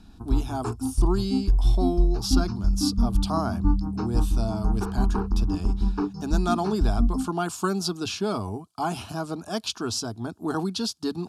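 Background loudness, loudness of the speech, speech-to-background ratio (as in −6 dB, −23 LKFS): −27.0 LKFS, −30.0 LKFS, −3.0 dB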